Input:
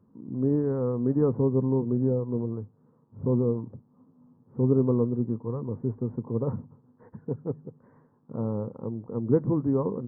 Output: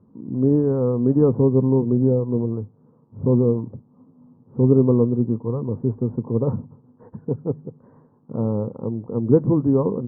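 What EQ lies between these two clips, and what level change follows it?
low-pass filter 1,100 Hz 12 dB per octave
+7.0 dB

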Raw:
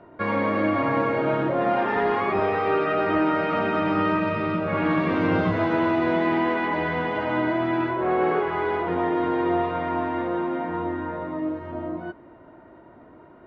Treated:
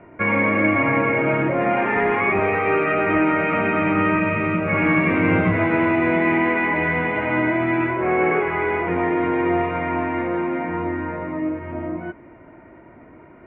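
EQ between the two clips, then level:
low-pass with resonance 2,300 Hz, resonance Q 6.4
high-frequency loss of the air 200 metres
low-shelf EQ 390 Hz +6 dB
0.0 dB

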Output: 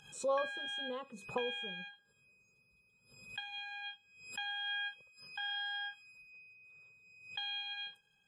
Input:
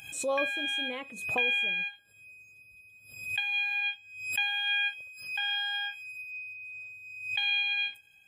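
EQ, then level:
high-frequency loss of the air 97 metres
phaser with its sweep stopped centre 450 Hz, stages 8
0.0 dB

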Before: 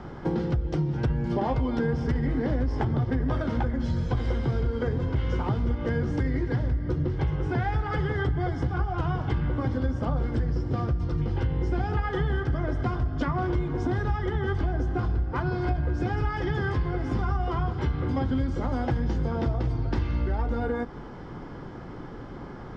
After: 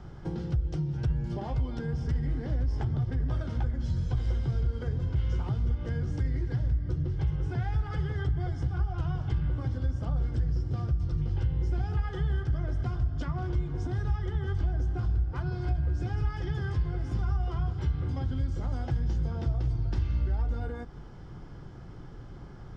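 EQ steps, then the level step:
octave-band graphic EQ 250/500/1,000/2,000/4,000 Hz −10/−8/−9/−8/−4 dB
0.0 dB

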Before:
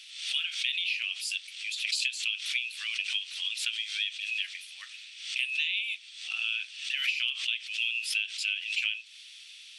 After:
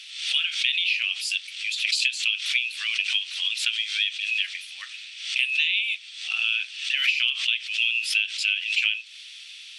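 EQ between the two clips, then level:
high-shelf EQ 8,600 Hz −8.5 dB
+7.5 dB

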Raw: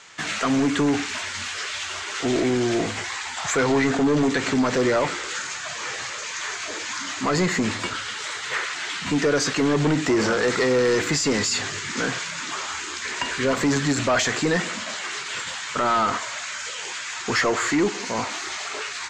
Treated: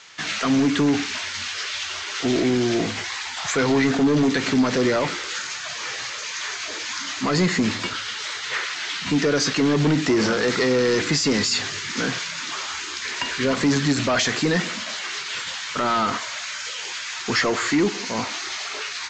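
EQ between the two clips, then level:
parametric band 6,000 Hz +13 dB 2.1 octaves
dynamic equaliser 200 Hz, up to +6 dB, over −35 dBFS, Q 0.75
high-frequency loss of the air 140 metres
−2.5 dB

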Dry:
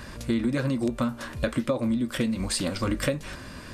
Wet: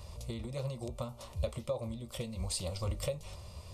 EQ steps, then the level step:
parametric band 80 Hz +13.5 dB 0.49 octaves
phaser with its sweep stopped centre 670 Hz, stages 4
−7.0 dB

